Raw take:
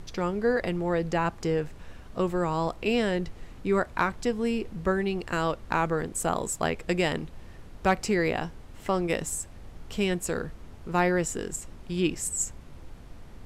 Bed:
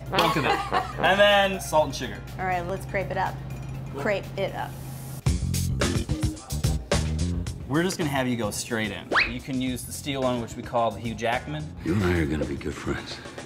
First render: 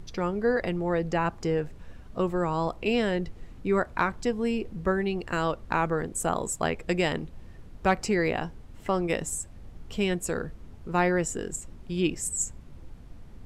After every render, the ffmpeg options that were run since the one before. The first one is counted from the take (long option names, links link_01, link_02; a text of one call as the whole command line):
ffmpeg -i in.wav -af "afftdn=noise_reduction=6:noise_floor=-46" out.wav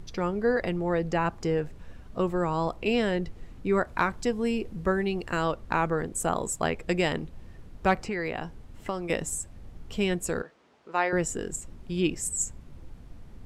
ffmpeg -i in.wav -filter_complex "[0:a]asettb=1/sr,asplit=3[link_01][link_02][link_03];[link_01]atrim=end=3.874[link_04];[link_02]atrim=start=3.87:end=5.32,asetpts=PTS-STARTPTS,afade=type=in:duration=0.004:curve=qsin,afade=type=out:start_time=1.446:duration=0.004:curve=qsin,highshelf=frequency=5300:gain=4[link_05];[link_03]atrim=start=5.316[link_06];[link_04][link_05]acrossfade=duration=0.004:curve1=hsin:curve2=qsin[link_07];[link_07][link_06]acrossfade=duration=0.004:curve1=qsin:curve2=hsin,asettb=1/sr,asplit=3[link_08][link_09][link_10];[link_08]atrim=end=7.954[link_11];[link_09]atrim=start=7.95:end=9.1,asetpts=PTS-STARTPTS,afade=type=in:duration=0.004:curve=qsin,afade=type=out:start_time=1.146:duration=0.004:curve=qsin,acrossover=split=660|3300[link_12][link_13][link_14];[link_12]acompressor=threshold=-32dB:ratio=4[link_15];[link_13]acompressor=threshold=-33dB:ratio=4[link_16];[link_14]acompressor=threshold=-49dB:ratio=4[link_17];[link_15][link_16][link_17]amix=inputs=3:normalize=0[link_18];[link_10]atrim=start=9.096[link_19];[link_11][link_18]acrossfade=duration=0.004:curve1=hsin:curve2=qsin[link_20];[link_20][link_19]acrossfade=duration=0.004:curve1=qsin:curve2=hsin,asettb=1/sr,asplit=3[link_21][link_22][link_23];[link_21]atrim=end=10.424[link_24];[link_22]atrim=start=10.42:end=11.13,asetpts=PTS-STARTPTS,afade=type=in:duration=0.004:curve=qsin,afade=type=out:start_time=0.706:duration=0.004:curve=qsin,highpass=500,lowpass=5700[link_25];[link_23]atrim=start=11.126[link_26];[link_24][link_25]acrossfade=duration=0.004:curve1=hsin:curve2=qsin[link_27];[link_27][link_26]acrossfade=duration=0.004:curve1=qsin:curve2=hsin" out.wav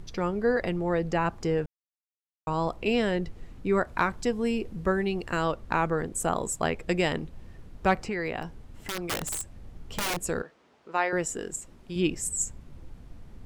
ffmpeg -i in.wav -filter_complex "[0:a]asplit=3[link_01][link_02][link_03];[link_01]afade=type=out:start_time=8.42:duration=0.02[link_04];[link_02]aeval=exprs='(mod(15.8*val(0)+1,2)-1)/15.8':channel_layout=same,afade=type=in:start_time=8.42:duration=0.02,afade=type=out:start_time=10.16:duration=0.02[link_05];[link_03]afade=type=in:start_time=10.16:duration=0.02[link_06];[link_04][link_05][link_06]amix=inputs=3:normalize=0,asettb=1/sr,asplit=3[link_07][link_08][link_09];[link_07]atrim=end=10.974[link_10];[link_08]atrim=start=10.97:end=11.96,asetpts=PTS-STARTPTS,afade=type=in:duration=0.004:curve=qsin,afade=type=out:start_time=0.986:duration=0.004:curve=qsin,lowshelf=frequency=170:gain=-10[link_11];[link_09]atrim=start=11.956[link_12];[link_10][link_11]acrossfade=duration=0.004:curve1=hsin:curve2=qsin[link_13];[link_13][link_12]acrossfade=duration=0.004:curve1=qsin:curve2=hsin,asplit=3[link_14][link_15][link_16];[link_14]atrim=end=1.66,asetpts=PTS-STARTPTS,afade=type=out:start_time=1.656:duration=0.004:curve=hsin[link_17];[link_15]atrim=start=1.66:end=2.47,asetpts=PTS-STARTPTS,volume=0[link_18];[link_16]atrim=start=2.47,asetpts=PTS-STARTPTS,afade=type=in:duration=0.004:curve=hsin[link_19];[link_17][link_18][link_19]concat=n=3:v=0:a=1" out.wav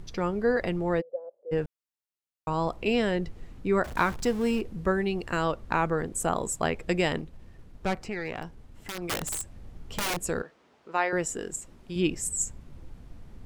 ffmpeg -i in.wav -filter_complex "[0:a]asplit=3[link_01][link_02][link_03];[link_01]afade=type=out:start_time=1:duration=0.02[link_04];[link_02]asuperpass=centerf=540:order=4:qfactor=6.1,afade=type=in:start_time=1:duration=0.02,afade=type=out:start_time=1.51:duration=0.02[link_05];[link_03]afade=type=in:start_time=1.51:duration=0.02[link_06];[link_04][link_05][link_06]amix=inputs=3:normalize=0,asettb=1/sr,asplit=3[link_07][link_08][link_09];[link_07]atrim=end=3.844[link_10];[link_08]atrim=start=3.84:end=4.61,asetpts=PTS-STARTPTS,afade=type=in:duration=0.004:curve=qsin,afade=type=out:start_time=0.766:duration=0.004:curve=qsin,aeval=exprs='val(0)+0.5*0.0158*sgn(val(0))':channel_layout=same[link_11];[link_09]atrim=start=4.606[link_12];[link_10][link_11]acrossfade=duration=0.004:curve1=hsin:curve2=qsin[link_13];[link_13][link_12]acrossfade=duration=0.004:curve1=qsin:curve2=hsin,asettb=1/sr,asplit=3[link_14][link_15][link_16];[link_14]atrim=end=7.214[link_17];[link_15]atrim=start=7.21:end=9.02,asetpts=PTS-STARTPTS,afade=type=in:duration=0.004:curve=qsin,afade=type=out:start_time=1.806:duration=0.004:curve=qsin,aeval=exprs='(tanh(12.6*val(0)+0.65)-tanh(0.65))/12.6':channel_layout=same[link_18];[link_16]atrim=start=9.016[link_19];[link_17][link_18]acrossfade=duration=0.004:curve1=hsin:curve2=qsin[link_20];[link_20][link_19]acrossfade=duration=0.004:curve1=qsin:curve2=hsin" out.wav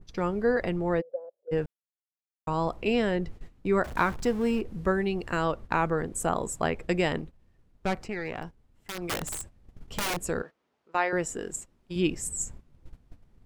ffmpeg -i in.wav -af "agate=range=-14dB:threshold=-39dB:ratio=16:detection=peak,adynamicequalizer=threshold=0.00708:dfrequency=2600:dqfactor=0.7:tfrequency=2600:tqfactor=0.7:attack=5:release=100:ratio=0.375:range=3:mode=cutabove:tftype=highshelf" out.wav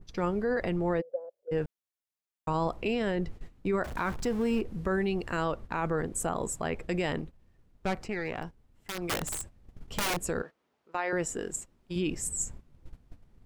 ffmpeg -i in.wav -af "alimiter=limit=-20.5dB:level=0:latency=1:release=24" out.wav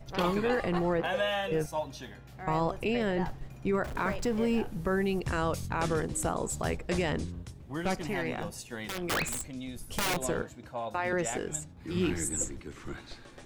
ffmpeg -i in.wav -i bed.wav -filter_complex "[1:a]volume=-12.5dB[link_01];[0:a][link_01]amix=inputs=2:normalize=0" out.wav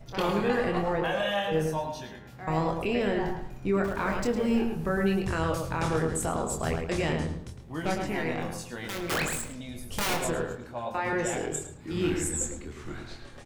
ffmpeg -i in.wav -filter_complex "[0:a]asplit=2[link_01][link_02];[link_02]adelay=25,volume=-5.5dB[link_03];[link_01][link_03]amix=inputs=2:normalize=0,asplit=2[link_04][link_05];[link_05]adelay=108,lowpass=frequency=2700:poles=1,volume=-4.5dB,asplit=2[link_06][link_07];[link_07]adelay=108,lowpass=frequency=2700:poles=1,volume=0.32,asplit=2[link_08][link_09];[link_09]adelay=108,lowpass=frequency=2700:poles=1,volume=0.32,asplit=2[link_10][link_11];[link_11]adelay=108,lowpass=frequency=2700:poles=1,volume=0.32[link_12];[link_06][link_08][link_10][link_12]amix=inputs=4:normalize=0[link_13];[link_04][link_13]amix=inputs=2:normalize=0" out.wav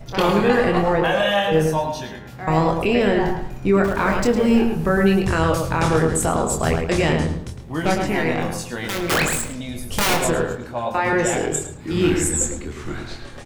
ffmpeg -i in.wav -af "volume=9.5dB" out.wav